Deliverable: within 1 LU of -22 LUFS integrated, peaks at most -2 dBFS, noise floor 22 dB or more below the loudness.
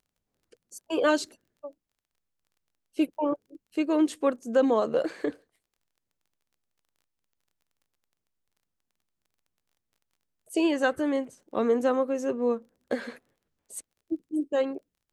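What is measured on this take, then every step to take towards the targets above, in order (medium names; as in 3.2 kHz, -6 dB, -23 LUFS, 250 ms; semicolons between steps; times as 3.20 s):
tick rate 20 per s; loudness -28.0 LUFS; peak level -11.5 dBFS; loudness target -22.0 LUFS
-> de-click; trim +6 dB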